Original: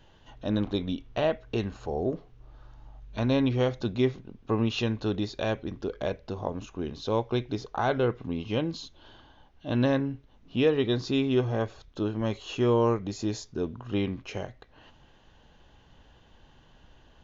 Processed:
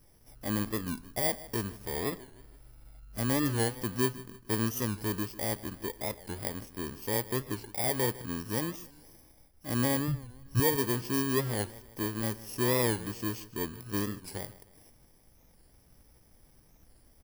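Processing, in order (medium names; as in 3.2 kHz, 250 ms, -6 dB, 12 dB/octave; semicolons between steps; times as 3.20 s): bit-reversed sample order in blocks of 32 samples; 10.08–10.60 s: resonant low shelf 160 Hz +8.5 dB, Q 3; feedback delay 154 ms, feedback 43%, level -18 dB; warped record 45 rpm, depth 160 cents; trim -4 dB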